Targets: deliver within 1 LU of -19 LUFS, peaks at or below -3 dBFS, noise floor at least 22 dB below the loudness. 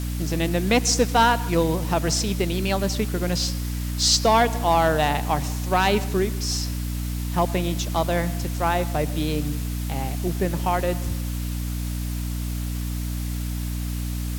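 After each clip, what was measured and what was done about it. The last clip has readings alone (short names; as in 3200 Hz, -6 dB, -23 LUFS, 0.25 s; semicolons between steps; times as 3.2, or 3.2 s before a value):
hum 60 Hz; harmonics up to 300 Hz; hum level -25 dBFS; noise floor -28 dBFS; noise floor target -46 dBFS; loudness -23.5 LUFS; peak -8.0 dBFS; loudness target -19.0 LUFS
-> de-hum 60 Hz, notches 5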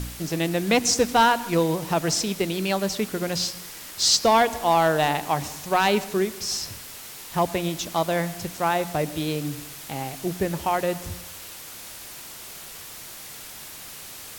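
hum none; noise floor -40 dBFS; noise floor target -46 dBFS
-> denoiser 6 dB, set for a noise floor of -40 dBFS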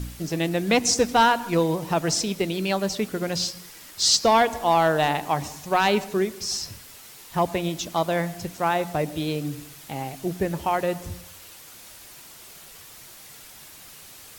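noise floor -46 dBFS; loudness -23.5 LUFS; peak -9.5 dBFS; loudness target -19.0 LUFS
-> gain +4.5 dB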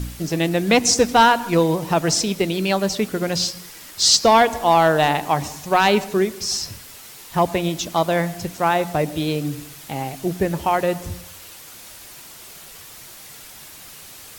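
loudness -19.0 LUFS; peak -5.0 dBFS; noise floor -41 dBFS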